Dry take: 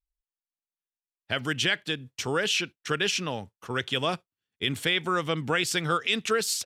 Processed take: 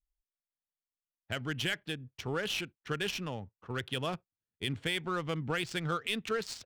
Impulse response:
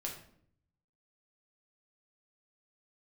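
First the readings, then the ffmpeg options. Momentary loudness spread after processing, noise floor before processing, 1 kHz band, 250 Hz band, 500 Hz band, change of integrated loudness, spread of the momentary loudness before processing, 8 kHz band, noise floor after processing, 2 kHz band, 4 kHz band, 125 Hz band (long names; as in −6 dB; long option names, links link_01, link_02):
7 LU, below −85 dBFS, −8.0 dB, −5.5 dB, −7.0 dB, −8.0 dB, 7 LU, −13.0 dB, below −85 dBFS, −8.5 dB, −9.0 dB, −3.0 dB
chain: -af "adynamicsmooth=sensitivity=4:basefreq=1800,lowshelf=frequency=140:gain=10,volume=-8dB"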